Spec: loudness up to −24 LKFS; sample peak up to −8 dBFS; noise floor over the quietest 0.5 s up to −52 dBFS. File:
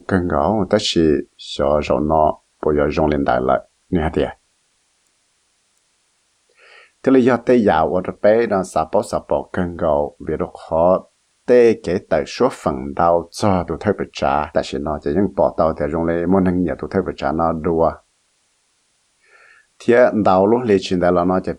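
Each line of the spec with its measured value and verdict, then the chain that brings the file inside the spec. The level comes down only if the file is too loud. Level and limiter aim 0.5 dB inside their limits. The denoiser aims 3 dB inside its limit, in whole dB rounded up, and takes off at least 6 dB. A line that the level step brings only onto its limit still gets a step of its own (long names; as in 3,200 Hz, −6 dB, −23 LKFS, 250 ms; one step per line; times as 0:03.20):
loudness −17.5 LKFS: out of spec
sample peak −3.0 dBFS: out of spec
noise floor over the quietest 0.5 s −64 dBFS: in spec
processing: level −7 dB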